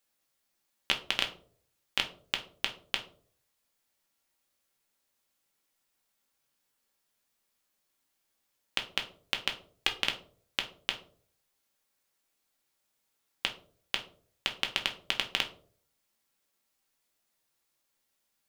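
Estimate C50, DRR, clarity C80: 12.0 dB, 2.5 dB, 16.5 dB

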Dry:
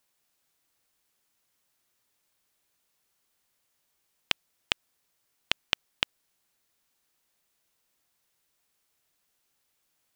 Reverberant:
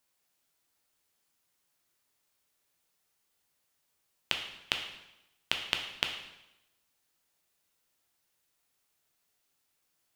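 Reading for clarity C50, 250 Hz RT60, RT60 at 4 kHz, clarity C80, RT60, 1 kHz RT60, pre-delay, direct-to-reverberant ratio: 6.5 dB, 0.95 s, 0.85 s, 9.0 dB, 0.90 s, 0.90 s, 5 ms, 3.0 dB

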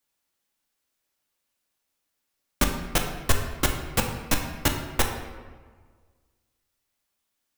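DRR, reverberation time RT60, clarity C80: 2.5 dB, 1.6 s, 7.5 dB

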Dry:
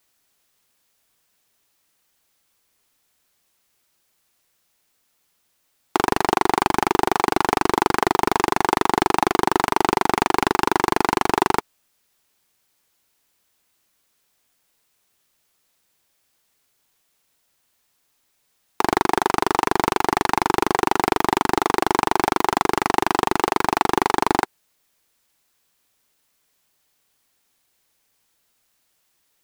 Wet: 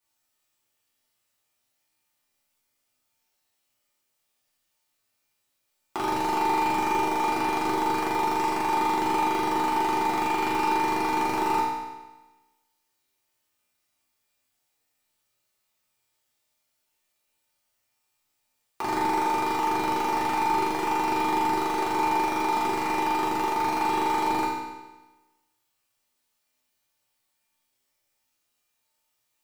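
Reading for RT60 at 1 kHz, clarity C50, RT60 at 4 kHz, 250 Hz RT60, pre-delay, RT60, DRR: 1.2 s, 0.5 dB, 1.1 s, 1.2 s, 3 ms, 1.2 s, -8.5 dB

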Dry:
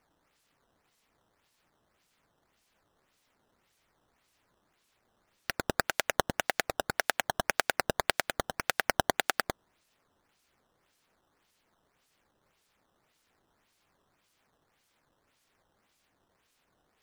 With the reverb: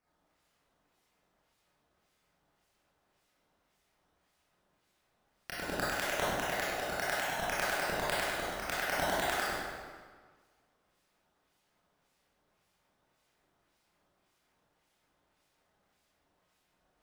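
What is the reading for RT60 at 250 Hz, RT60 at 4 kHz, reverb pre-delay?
1.6 s, 1.2 s, 22 ms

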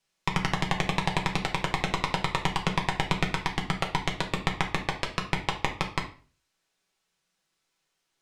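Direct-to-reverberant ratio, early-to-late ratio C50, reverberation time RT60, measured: 1.0 dB, 10.5 dB, 0.40 s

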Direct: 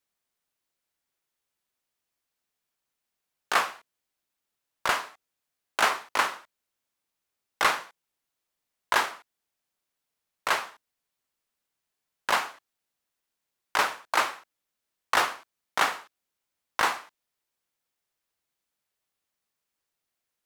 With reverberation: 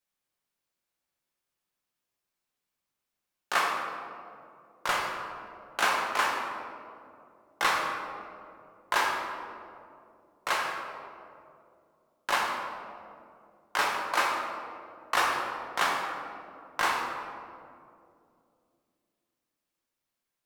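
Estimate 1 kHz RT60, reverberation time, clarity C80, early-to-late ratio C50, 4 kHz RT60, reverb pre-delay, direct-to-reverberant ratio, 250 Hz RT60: 2.1 s, 2.5 s, 3.5 dB, 1.5 dB, 1.1 s, 6 ms, -1.0 dB, 3.5 s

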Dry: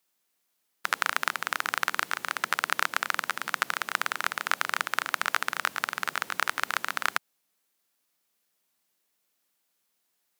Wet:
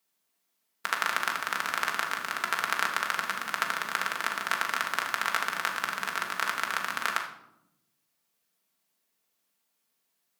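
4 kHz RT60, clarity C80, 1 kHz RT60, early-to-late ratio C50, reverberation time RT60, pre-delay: 0.50 s, 11.0 dB, 0.75 s, 7.0 dB, 0.85 s, 4 ms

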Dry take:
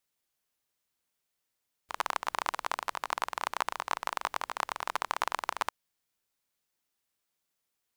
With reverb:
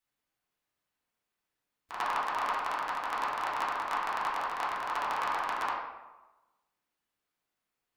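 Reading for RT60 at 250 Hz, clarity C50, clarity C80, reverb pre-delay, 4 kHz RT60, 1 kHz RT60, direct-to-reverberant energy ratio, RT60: 1.0 s, 1.5 dB, 4.0 dB, 3 ms, 0.65 s, 1.2 s, -8.5 dB, 1.1 s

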